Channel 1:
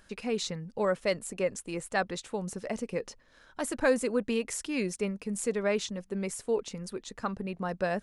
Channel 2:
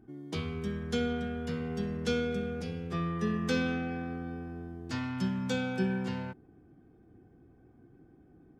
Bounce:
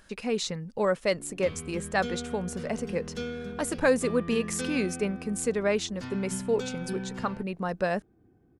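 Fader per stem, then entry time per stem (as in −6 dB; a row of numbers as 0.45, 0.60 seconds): +2.5, −4.5 decibels; 0.00, 1.10 seconds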